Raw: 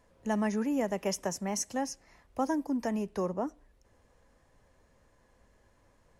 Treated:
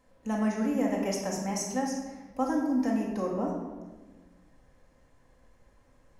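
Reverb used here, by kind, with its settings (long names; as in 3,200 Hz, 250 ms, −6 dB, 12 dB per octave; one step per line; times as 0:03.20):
rectangular room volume 1,000 cubic metres, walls mixed, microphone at 2.1 metres
level −3 dB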